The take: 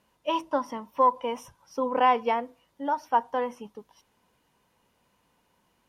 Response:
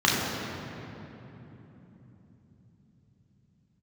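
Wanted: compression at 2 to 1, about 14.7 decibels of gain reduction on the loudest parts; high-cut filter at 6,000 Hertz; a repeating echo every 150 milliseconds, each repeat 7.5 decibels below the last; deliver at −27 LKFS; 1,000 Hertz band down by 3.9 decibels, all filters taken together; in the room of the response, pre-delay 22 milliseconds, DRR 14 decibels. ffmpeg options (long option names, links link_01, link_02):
-filter_complex "[0:a]lowpass=6000,equalizer=frequency=1000:width_type=o:gain=-4.5,acompressor=threshold=-48dB:ratio=2,aecho=1:1:150|300|450|600|750:0.422|0.177|0.0744|0.0312|0.0131,asplit=2[link_01][link_02];[1:a]atrim=start_sample=2205,adelay=22[link_03];[link_02][link_03]afir=irnorm=-1:irlink=0,volume=-32.5dB[link_04];[link_01][link_04]amix=inputs=2:normalize=0,volume=15.5dB"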